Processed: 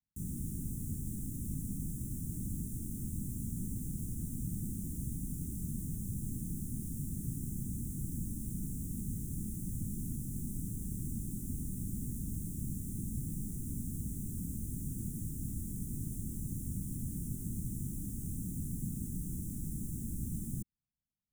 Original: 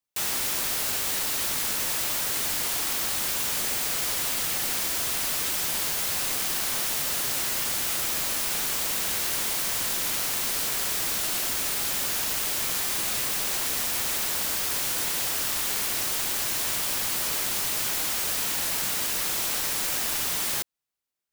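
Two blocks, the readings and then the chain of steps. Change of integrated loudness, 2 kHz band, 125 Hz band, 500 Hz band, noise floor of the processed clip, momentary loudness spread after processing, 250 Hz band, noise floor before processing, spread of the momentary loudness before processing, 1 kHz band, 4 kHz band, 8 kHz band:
−15.5 dB, below −40 dB, +9.0 dB, −20.5 dB, −43 dBFS, 1 LU, +4.0 dB, −28 dBFS, 0 LU, below −40 dB, below −40 dB, −19.5 dB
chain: inverse Chebyshev band-stop filter 530–4,800 Hz, stop band 50 dB
high-frequency loss of the air 150 metres
level +9 dB

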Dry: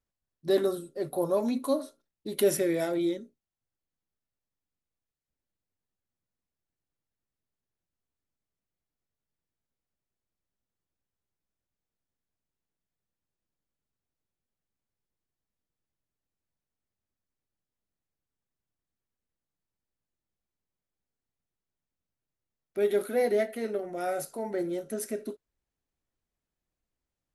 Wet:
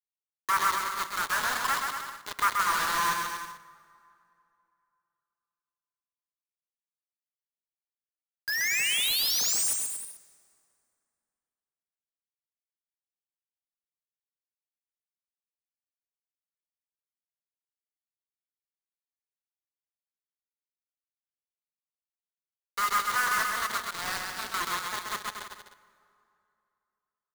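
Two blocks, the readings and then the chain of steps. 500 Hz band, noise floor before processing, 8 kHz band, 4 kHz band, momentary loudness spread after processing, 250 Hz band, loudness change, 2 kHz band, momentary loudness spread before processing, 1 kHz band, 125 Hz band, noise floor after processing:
−18.5 dB, below −85 dBFS, +12.5 dB, +15.5 dB, 15 LU, −17.0 dB, +2.5 dB, +15.5 dB, 12 LU, +12.5 dB, can't be measured, below −85 dBFS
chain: each half-wave held at its own peak
elliptic high-pass filter 960 Hz, stop band 50 dB
treble cut that deepens with the level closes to 2,400 Hz, closed at −32 dBFS
flat-topped bell 4,600 Hz −14 dB 2.3 octaves
sound drawn into the spectrogram rise, 0:08.47–0:09.74, 1,600–10,000 Hz −37 dBFS
bit reduction 6 bits
on a send: bouncing-ball delay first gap 130 ms, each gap 0.8×, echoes 5
on the sum: dense smooth reverb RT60 2.8 s, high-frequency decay 0.65×, DRR 17.5 dB
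level +5 dB

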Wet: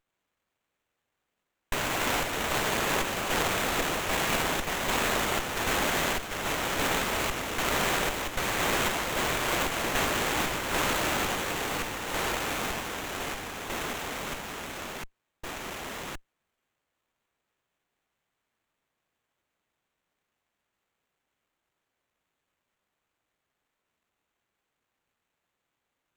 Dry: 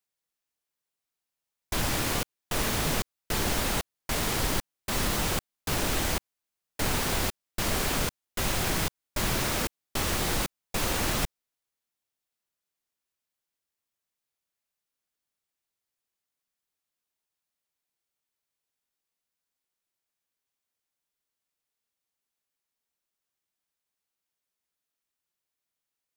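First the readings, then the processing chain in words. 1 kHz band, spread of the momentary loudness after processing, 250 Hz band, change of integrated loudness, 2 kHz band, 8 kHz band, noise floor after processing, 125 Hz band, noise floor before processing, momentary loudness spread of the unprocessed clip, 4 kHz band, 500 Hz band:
+5.5 dB, 11 LU, +0.5 dB, +0.5 dB, +5.5 dB, −0.5 dB, −84 dBFS, −4.0 dB, below −85 dBFS, 5 LU, +2.0 dB, +4.0 dB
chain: bass and treble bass −14 dB, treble +8 dB
delay with pitch and tempo change per echo 81 ms, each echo −2 semitones, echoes 3
windowed peak hold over 9 samples

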